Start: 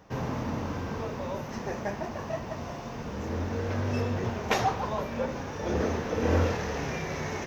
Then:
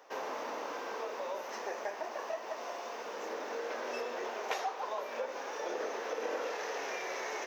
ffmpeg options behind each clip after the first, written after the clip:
-af "highpass=f=420:w=0.5412,highpass=f=420:w=1.3066,acompressor=threshold=-35dB:ratio=3"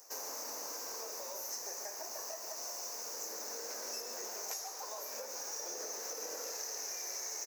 -af "aecho=1:1:141:0.266,aexciter=amount=13.6:drive=8.7:freq=5.2k,acompressor=threshold=-30dB:ratio=6,volume=-8dB"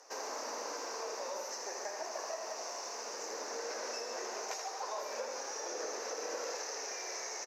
-af "highpass=250,lowpass=3.9k,aecho=1:1:81:0.447,volume=6dB"

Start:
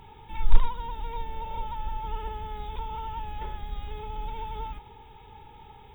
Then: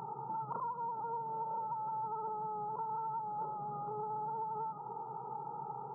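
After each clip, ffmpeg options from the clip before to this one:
-af "afftfilt=real='re*between(b*sr/4096,120,1400)':imag='im*between(b*sr/4096,120,1400)':win_size=4096:overlap=0.75,equalizer=f=260:t=o:w=0.89:g=-11,acompressor=threshold=-48dB:ratio=5,volume=10dB"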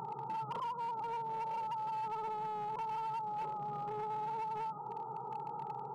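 -af "volume=36dB,asoftclip=hard,volume=-36dB,volume=1dB"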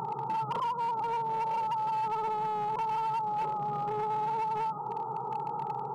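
-af "aeval=exprs='val(0)+0.000501*sin(2*PI*1100*n/s)':c=same,volume=7.5dB"

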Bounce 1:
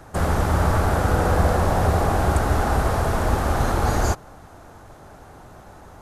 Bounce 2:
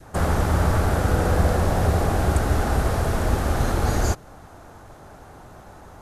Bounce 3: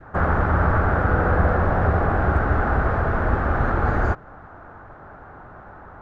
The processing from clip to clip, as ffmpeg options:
-af "adynamicequalizer=threshold=0.0141:dfrequency=970:dqfactor=1.1:tfrequency=970:tqfactor=1.1:attack=5:release=100:ratio=0.375:range=2.5:mode=cutabove:tftype=bell"
-af "lowpass=f=1.5k:t=q:w=2.3"

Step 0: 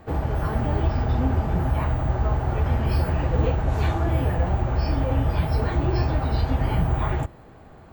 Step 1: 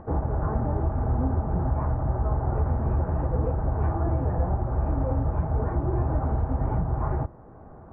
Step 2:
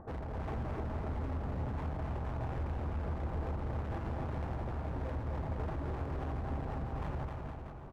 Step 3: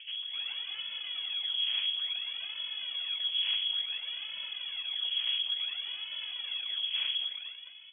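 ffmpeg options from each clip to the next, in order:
-af "lowpass=f=1.3k:w=0.5412,lowpass=f=1.3k:w=1.3066,acompressor=mode=upward:threshold=-41dB:ratio=2.5,alimiter=limit=-15.5dB:level=0:latency=1:release=425"
-filter_complex "[0:a]volume=31dB,asoftclip=hard,volume=-31dB,asplit=2[a][b];[b]aecho=0:1:260|468|634.4|767.5|874:0.631|0.398|0.251|0.158|0.1[c];[a][c]amix=inputs=2:normalize=0,volume=-7dB"
-filter_complex "[0:a]asplit=2[a][b];[b]acrusher=bits=5:mix=0:aa=0.000001,volume=-10dB[c];[a][c]amix=inputs=2:normalize=0,aphaser=in_gain=1:out_gain=1:delay=2.5:decay=0.65:speed=0.57:type=sinusoidal,lowpass=f=2.9k:t=q:w=0.5098,lowpass=f=2.9k:t=q:w=0.6013,lowpass=f=2.9k:t=q:w=0.9,lowpass=f=2.9k:t=q:w=2.563,afreqshift=-3400,volume=-6.5dB"

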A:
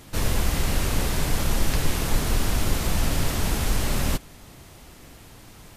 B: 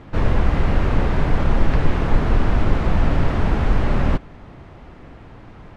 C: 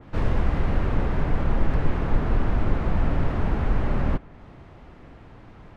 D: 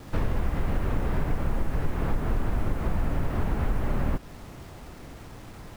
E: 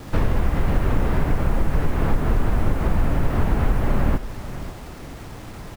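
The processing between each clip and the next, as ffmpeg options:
-af "lowpass=1.7k,volume=6.5dB"
-filter_complex "[0:a]acrossover=split=480[a][b];[b]asoftclip=type=hard:threshold=-26dB[c];[a][c]amix=inputs=2:normalize=0,adynamicequalizer=threshold=0.00398:dfrequency=2900:dqfactor=0.7:tfrequency=2900:tqfactor=0.7:attack=5:release=100:ratio=0.375:range=3.5:mode=cutabove:tftype=highshelf,volume=-5dB"
-af "acompressor=threshold=-24dB:ratio=5,acrusher=bits=8:mix=0:aa=0.000001,volume=2.5dB"
-af "aecho=1:1:540:0.211,volume=6.5dB"

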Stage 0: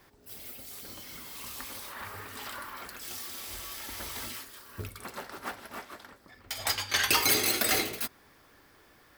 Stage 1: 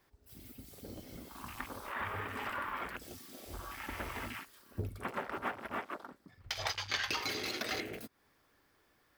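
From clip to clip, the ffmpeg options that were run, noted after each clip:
-af "acompressor=threshold=-37dB:ratio=6,afwtdn=0.00562,volume=5dB"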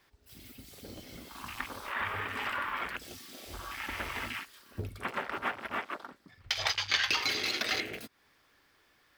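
-af "equalizer=f=3.1k:w=0.47:g=8"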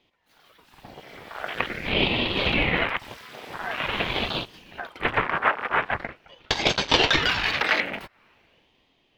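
-filter_complex "[0:a]acrossover=split=380 2800:gain=0.0794 1 0.112[a][b][c];[a][b][c]amix=inputs=3:normalize=0,dynaudnorm=f=110:g=17:m=10dB,aeval=exprs='val(0)*sin(2*PI*800*n/s+800*0.85/0.45*sin(2*PI*0.45*n/s))':c=same,volume=6dB"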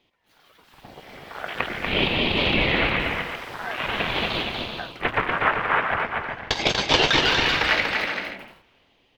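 -af "aecho=1:1:240|384|470.4|522.2|553.3:0.631|0.398|0.251|0.158|0.1"

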